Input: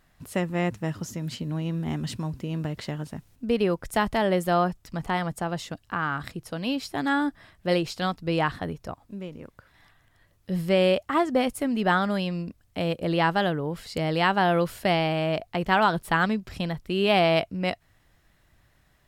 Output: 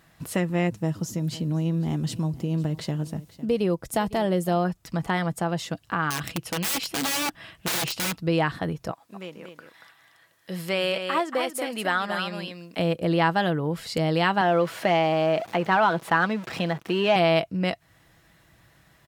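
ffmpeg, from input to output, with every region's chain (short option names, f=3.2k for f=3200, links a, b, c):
-filter_complex "[0:a]asettb=1/sr,asplit=3[a][b][c];[a]atrim=end=0.674[d];[b]atrim=start=0.67:end=4.65,asetpts=PTS-STARTPTS,afade=t=in:d=0.004:c=qsin,afade=t=out:st=3.976:d=0.004:c=qsin,equalizer=f=1.8k:t=o:w=1.8:g=-7,aecho=1:1:504:0.1,atrim=end_sample=175518[e];[c]atrim=start=4.646[f];[d][e]acrossfade=d=0.004:c1=hsin:c2=qsin[g];[g][f]acrossfade=d=0.004:c1=qsin:c2=hsin,asettb=1/sr,asplit=3[h][i][j];[h]atrim=end=6.104[k];[i]atrim=start=6.1:end=8.18,asetpts=PTS-STARTPTS,afade=t=in:d=0.004:c=qsin,afade=t=out:st=2.076:d=0.004:c=qsin,equalizer=f=2.8k:t=o:w=0.43:g=11.5,aeval=exprs='(mod(16.8*val(0)+1,2)-1)/16.8':c=same[l];[j]atrim=start=8.176[m];[k][l]acrossfade=d=0.004:c1=hsin:c2=qsin[n];[n][m]acrossfade=d=0.004:c1=qsin:c2=hsin,asettb=1/sr,asplit=3[o][p][q];[o]atrim=end=8.914[r];[p]atrim=start=8.91:end=12.79,asetpts=PTS-STARTPTS,afade=t=in:d=0.004:c=qsin,afade=t=out:st=3.876:d=0.004:c=qsin,highpass=f=820:p=1,aecho=1:1:232:0.398,atrim=end_sample=171108[s];[q]atrim=start=12.786[t];[r][s]acrossfade=d=0.004:c1=hsin:c2=qsin[u];[u][t]acrossfade=d=0.004:c1=qsin:c2=hsin,asettb=1/sr,asplit=3[v][w][x];[v]atrim=end=14.414[y];[w]atrim=start=14.41:end=17.16,asetpts=PTS-STARTPTS,afade=t=in:d=0.004:c=qsin,afade=t=out:st=2.746:d=0.004:c=qsin,aeval=exprs='val(0)+0.5*0.015*sgn(val(0))':c=same,highpass=130,asplit=2[z][aa];[aa]highpass=f=720:p=1,volume=10dB,asoftclip=type=tanh:threshold=-7.5dB[ab];[z][ab]amix=inputs=2:normalize=0,lowpass=f=1.6k:p=1,volume=-6dB[ac];[x]atrim=start=17.156[ad];[y][ac]acrossfade=d=0.004:c1=hsin:c2=qsin[ae];[ae][ad]acrossfade=d=0.004:c1=qsin:c2=hsin,highpass=71,aecho=1:1:6.1:0.31,acompressor=threshold=-37dB:ratio=1.5,volume=6.5dB"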